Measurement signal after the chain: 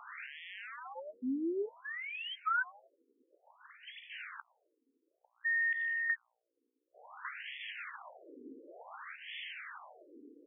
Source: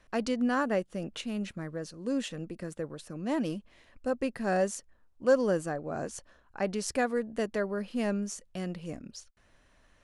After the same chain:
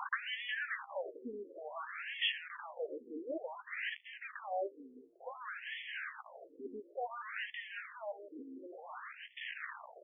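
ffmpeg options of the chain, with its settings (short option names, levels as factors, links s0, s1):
-filter_complex "[0:a]aeval=exprs='val(0)+0.5*0.0422*sgn(val(0))':c=same,acrossover=split=480[s0][s1];[s1]acompressor=threshold=0.0316:ratio=6[s2];[s0][s2]amix=inputs=2:normalize=0,asubboost=boost=11.5:cutoff=120,asplit=2[s3][s4];[s4]adelay=15,volume=0.299[s5];[s3][s5]amix=inputs=2:normalize=0,aeval=exprs='val(0)*gte(abs(val(0)),0.00944)':c=same,tiltshelf=f=710:g=-5,asplit=5[s6][s7][s8][s9][s10];[s7]adelay=380,afreqshift=66,volume=0.112[s11];[s8]adelay=760,afreqshift=132,volume=0.0525[s12];[s9]adelay=1140,afreqshift=198,volume=0.0248[s13];[s10]adelay=1520,afreqshift=264,volume=0.0116[s14];[s6][s11][s12][s13][s14]amix=inputs=5:normalize=0,acompressor=threshold=0.0501:ratio=6,afftfilt=real='re*between(b*sr/1024,340*pow(2500/340,0.5+0.5*sin(2*PI*0.56*pts/sr))/1.41,340*pow(2500/340,0.5+0.5*sin(2*PI*0.56*pts/sr))*1.41)':imag='im*between(b*sr/1024,340*pow(2500/340,0.5+0.5*sin(2*PI*0.56*pts/sr))/1.41,340*pow(2500/340,0.5+0.5*sin(2*PI*0.56*pts/sr))*1.41)':win_size=1024:overlap=0.75,volume=1.12"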